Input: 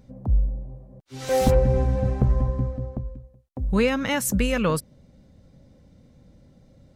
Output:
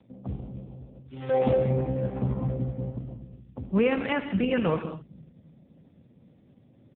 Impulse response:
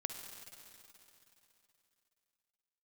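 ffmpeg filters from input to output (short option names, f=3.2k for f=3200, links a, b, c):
-filter_complex "[0:a]asplit=3[a][b][c];[a]afade=t=out:st=1.61:d=0.02[d];[b]equalizer=f=61:w=0.5:g=-5.5,afade=t=in:st=1.61:d=0.02,afade=t=out:st=2.28:d=0.02[e];[c]afade=t=in:st=2.28:d=0.02[f];[d][e][f]amix=inputs=3:normalize=0,acrossover=split=140|3000[g][h][i];[g]aecho=1:1:257|514|771|1028|1285|1542|1799:0.473|0.256|0.138|0.0745|0.0402|0.0217|0.0117[j];[i]alimiter=limit=-22.5dB:level=0:latency=1:release=377[k];[j][h][k]amix=inputs=3:normalize=0[l];[1:a]atrim=start_sample=2205,afade=t=out:st=0.3:d=0.01,atrim=end_sample=13671[m];[l][m]afir=irnorm=-1:irlink=0" -ar 8000 -c:a libopencore_amrnb -b:a 4750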